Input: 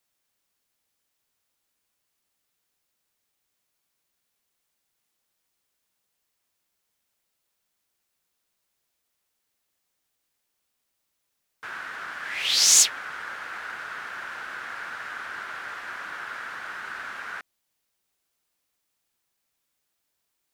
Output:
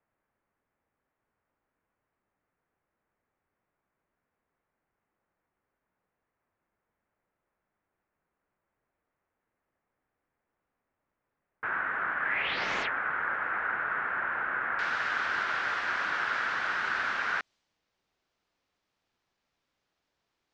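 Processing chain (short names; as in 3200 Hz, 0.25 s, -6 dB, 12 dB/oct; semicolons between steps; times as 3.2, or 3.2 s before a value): LPF 2000 Hz 24 dB/oct, from 14.79 s 5900 Hz; mismatched tape noise reduction decoder only; gain +5.5 dB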